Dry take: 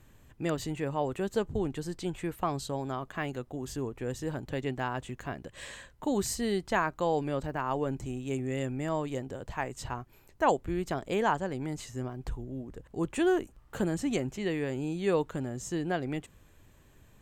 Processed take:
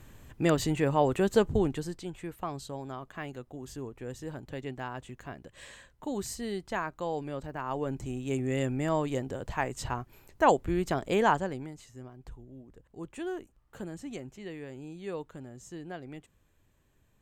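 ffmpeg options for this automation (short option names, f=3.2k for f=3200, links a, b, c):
-af "volume=14dB,afade=t=out:st=1.49:d=0.55:silence=0.281838,afade=t=in:st=7.48:d=1.1:silence=0.398107,afade=t=out:st=11.33:d=0.4:silence=0.223872"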